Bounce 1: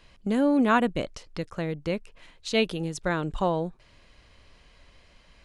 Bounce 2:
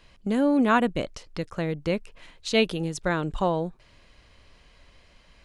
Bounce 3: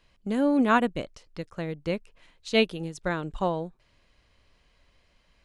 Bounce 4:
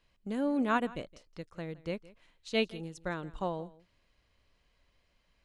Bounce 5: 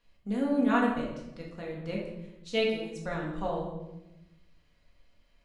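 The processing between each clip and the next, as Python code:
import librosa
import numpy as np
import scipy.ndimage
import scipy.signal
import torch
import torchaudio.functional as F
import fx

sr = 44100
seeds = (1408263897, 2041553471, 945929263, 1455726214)

y1 = fx.rider(x, sr, range_db=4, speed_s=2.0)
y2 = fx.upward_expand(y1, sr, threshold_db=-35.0, expansion=1.5)
y3 = y2 + 10.0 ** (-20.5 / 20.0) * np.pad(y2, (int(166 * sr / 1000.0), 0))[:len(y2)]
y3 = y3 * librosa.db_to_amplitude(-7.5)
y4 = fx.room_shoebox(y3, sr, seeds[0], volume_m3=360.0, walls='mixed', distance_m=1.8)
y4 = y4 * librosa.db_to_amplitude(-2.5)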